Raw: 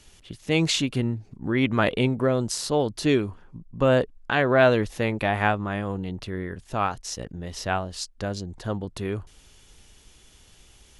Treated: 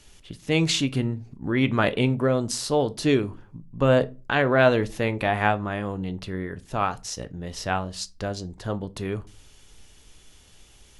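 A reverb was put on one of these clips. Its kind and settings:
rectangular room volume 130 cubic metres, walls furnished, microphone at 0.33 metres

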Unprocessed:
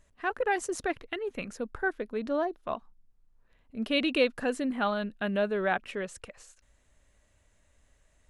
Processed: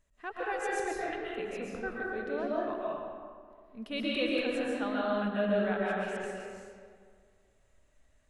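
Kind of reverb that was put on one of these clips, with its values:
comb and all-pass reverb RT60 2 s, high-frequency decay 0.55×, pre-delay 95 ms, DRR −6 dB
level −9.5 dB

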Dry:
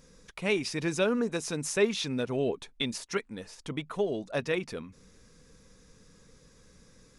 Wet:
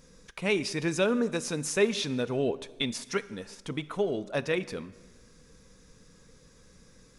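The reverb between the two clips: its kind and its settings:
dense smooth reverb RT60 1.4 s, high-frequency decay 0.75×, DRR 15.5 dB
level +1 dB

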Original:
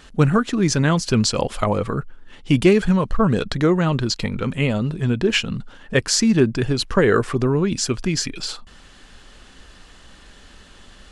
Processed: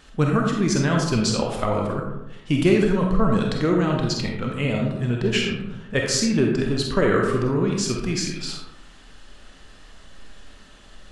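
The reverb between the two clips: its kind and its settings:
comb and all-pass reverb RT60 0.97 s, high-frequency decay 0.45×, pre-delay 5 ms, DRR 0 dB
level −5 dB

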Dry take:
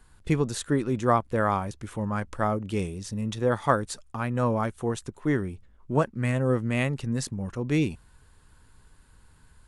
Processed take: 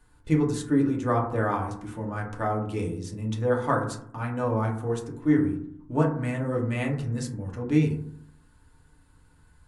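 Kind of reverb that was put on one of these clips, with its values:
feedback delay network reverb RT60 0.64 s, low-frequency decay 1.4×, high-frequency decay 0.3×, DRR −1.5 dB
level −6 dB

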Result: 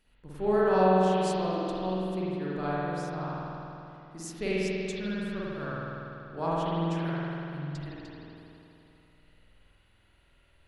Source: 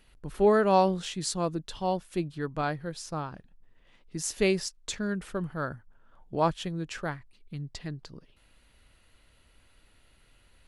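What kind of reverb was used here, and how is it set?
spring reverb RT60 3 s, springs 48 ms, chirp 35 ms, DRR −8.5 dB
level −10 dB

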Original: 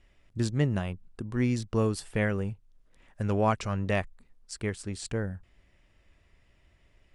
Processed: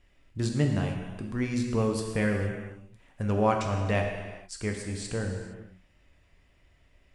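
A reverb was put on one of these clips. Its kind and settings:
reverb whose tail is shaped and stops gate 490 ms falling, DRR 1.5 dB
level −1 dB

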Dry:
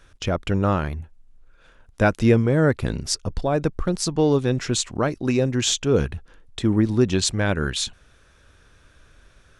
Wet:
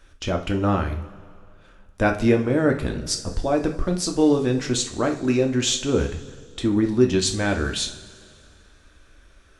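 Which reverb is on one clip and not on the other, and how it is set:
coupled-rooms reverb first 0.35 s, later 2.3 s, from −18 dB, DRR 3 dB
level −2 dB

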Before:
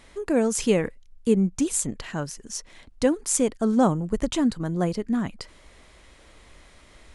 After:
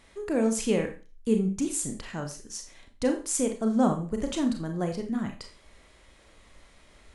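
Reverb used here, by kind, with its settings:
four-comb reverb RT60 0.34 s, combs from 28 ms, DRR 4.5 dB
level −5.5 dB

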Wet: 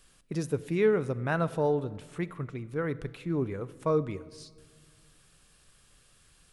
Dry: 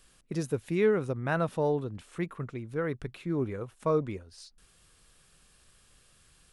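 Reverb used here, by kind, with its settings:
rectangular room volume 2,100 cubic metres, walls mixed, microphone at 0.34 metres

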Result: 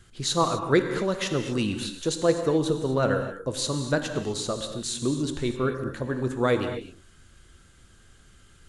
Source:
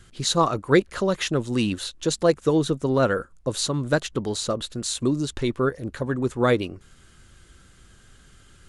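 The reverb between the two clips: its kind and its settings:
reverb whose tail is shaped and stops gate 280 ms flat, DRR 6 dB
level −3.5 dB

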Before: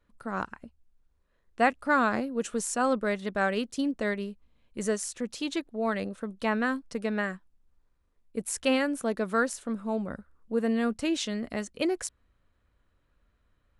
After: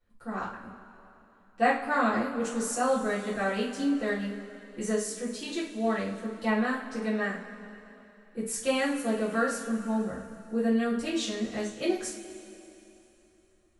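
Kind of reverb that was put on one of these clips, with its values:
coupled-rooms reverb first 0.37 s, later 3.2 s, from −18 dB, DRR −9.5 dB
level −10.5 dB

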